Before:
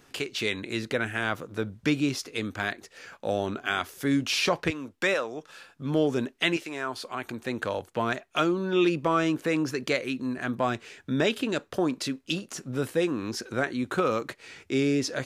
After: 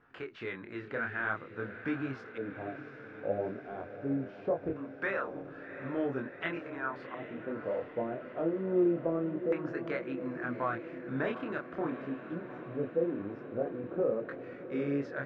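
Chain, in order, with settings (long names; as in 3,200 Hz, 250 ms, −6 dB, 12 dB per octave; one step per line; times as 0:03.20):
chorus effect 0.49 Hz, depth 7.6 ms
auto-filter low-pass square 0.21 Hz 570–1,500 Hz
feedback delay with all-pass diffusion 741 ms, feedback 68%, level −11 dB
level −6.5 dB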